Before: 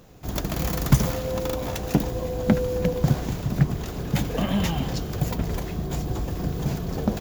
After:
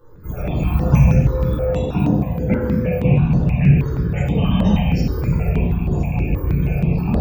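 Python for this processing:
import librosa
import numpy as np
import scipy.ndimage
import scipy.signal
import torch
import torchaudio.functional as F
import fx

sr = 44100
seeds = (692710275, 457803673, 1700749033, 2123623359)

y = fx.rattle_buzz(x, sr, strikes_db=-22.0, level_db=-20.0)
y = fx.highpass(y, sr, hz=72.0, slope=12, at=(1.51, 3.16))
y = fx.spec_topn(y, sr, count=64)
y = fx.room_shoebox(y, sr, seeds[0], volume_m3=500.0, walls='mixed', distance_m=4.4)
y = fx.phaser_held(y, sr, hz=6.3, low_hz=690.0, high_hz=7800.0)
y = F.gain(torch.from_numpy(y), -3.5).numpy()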